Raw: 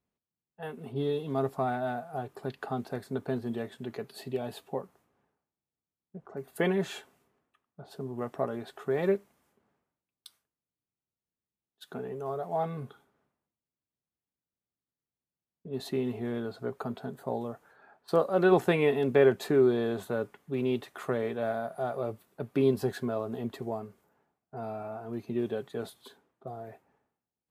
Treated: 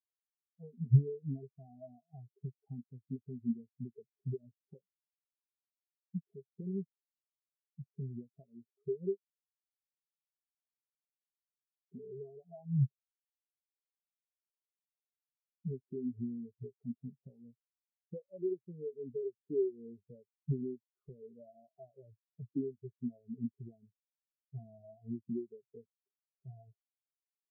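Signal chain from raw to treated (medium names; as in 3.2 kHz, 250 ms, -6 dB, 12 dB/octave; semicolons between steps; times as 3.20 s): compression 10:1, threshold -40 dBFS, peak gain reduction 22.5 dB; tilt EQ -3.5 dB/octave; spectral contrast expander 4:1; trim +5.5 dB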